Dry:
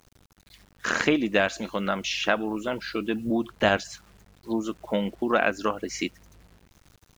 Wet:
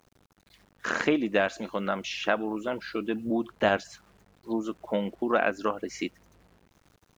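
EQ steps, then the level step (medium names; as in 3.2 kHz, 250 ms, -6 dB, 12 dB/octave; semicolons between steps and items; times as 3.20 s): bass shelf 140 Hz -10 dB; treble shelf 2 kHz -8 dB; 0.0 dB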